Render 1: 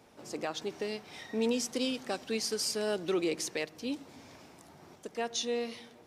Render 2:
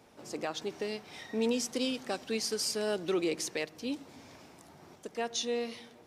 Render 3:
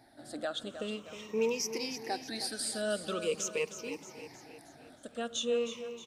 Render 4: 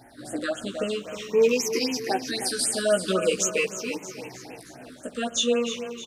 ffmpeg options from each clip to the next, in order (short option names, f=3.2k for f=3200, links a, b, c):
-af anull
-filter_complex "[0:a]afftfilt=real='re*pow(10,17/40*sin(2*PI*(0.78*log(max(b,1)*sr/1024/100)/log(2)-(-0.44)*(pts-256)/sr)))':imag='im*pow(10,17/40*sin(2*PI*(0.78*log(max(b,1)*sr/1024/100)/log(2)-(-0.44)*(pts-256)/sr)))':win_size=1024:overlap=0.75,asplit=2[a][b];[b]aecho=0:1:313|626|939|1252|1565:0.282|0.144|0.0733|0.0374|0.0191[c];[a][c]amix=inputs=2:normalize=0,volume=-4.5dB"
-filter_complex "[0:a]asplit=2[a][b];[b]adelay=16,volume=-2.5dB[c];[a][c]amix=inputs=2:normalize=0,afftfilt=real='re*(1-between(b*sr/1024,680*pow(4600/680,0.5+0.5*sin(2*PI*3.8*pts/sr))/1.41,680*pow(4600/680,0.5+0.5*sin(2*PI*3.8*pts/sr))*1.41))':imag='im*(1-between(b*sr/1024,680*pow(4600/680,0.5+0.5*sin(2*PI*3.8*pts/sr))/1.41,680*pow(4600/680,0.5+0.5*sin(2*PI*3.8*pts/sr))*1.41))':win_size=1024:overlap=0.75,volume=9dB"